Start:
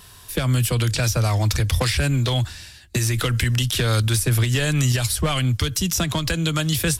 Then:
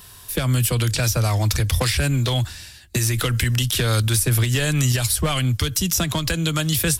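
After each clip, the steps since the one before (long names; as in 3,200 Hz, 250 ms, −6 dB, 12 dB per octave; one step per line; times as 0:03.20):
high-shelf EQ 11,000 Hz +8 dB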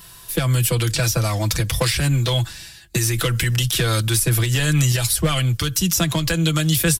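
comb filter 6 ms, depth 58%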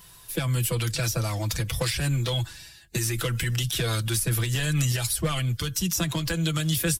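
spectral magnitudes quantised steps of 15 dB
level −6.5 dB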